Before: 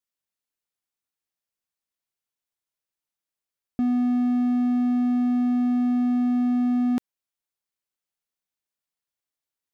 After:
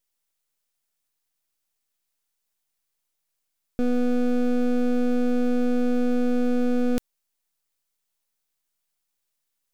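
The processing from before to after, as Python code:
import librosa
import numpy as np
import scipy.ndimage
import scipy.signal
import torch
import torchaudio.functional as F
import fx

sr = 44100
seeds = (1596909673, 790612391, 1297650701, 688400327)

y = fx.high_shelf(x, sr, hz=3300.0, db=12.0)
y = np.maximum(y, 0.0)
y = y * librosa.db_to_amplitude(3.5)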